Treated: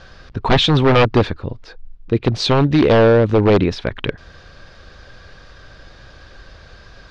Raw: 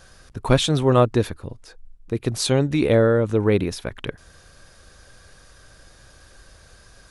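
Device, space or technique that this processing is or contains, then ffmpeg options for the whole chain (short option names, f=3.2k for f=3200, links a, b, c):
synthesiser wavefolder: -filter_complex "[0:a]asettb=1/sr,asplit=3[a][b][c];[a]atrim=end=2.344[d];[b]atrim=start=2.34:end=3.55,asetpts=PTS-STARTPTS,afade=t=in:d=0.004:c=qsin,afade=t=out:st=1.206:d=0.004:c=qsin,equalizer=f=1.3k:w=1.2:g=-4.5[e];[c]atrim=start=3.546[f];[d][e]acrossfade=d=0.004:c1=hsin:c2=qsin[g];[g][f]acrossfade=d=0.004:c1=qsin:c2=hsin,aeval=exprs='0.2*(abs(mod(val(0)/0.2+3,4)-2)-1)':c=same,lowpass=f=4.6k:w=0.5412,lowpass=f=4.6k:w=1.3066,volume=8dB"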